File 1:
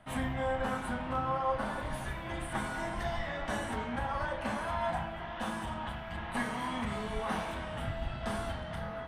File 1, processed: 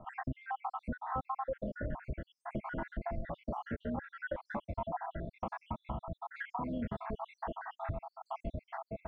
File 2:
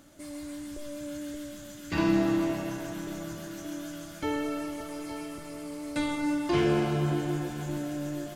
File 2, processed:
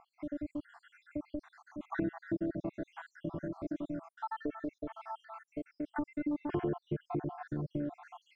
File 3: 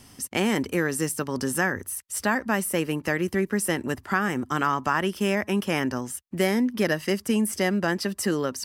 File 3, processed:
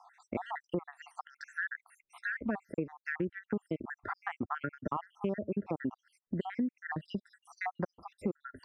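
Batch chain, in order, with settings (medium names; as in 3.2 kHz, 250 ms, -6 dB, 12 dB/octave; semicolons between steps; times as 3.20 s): random holes in the spectrogram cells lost 74%; low-pass 1.2 kHz 12 dB/octave; compression 3:1, threshold -43 dBFS; trim +7.5 dB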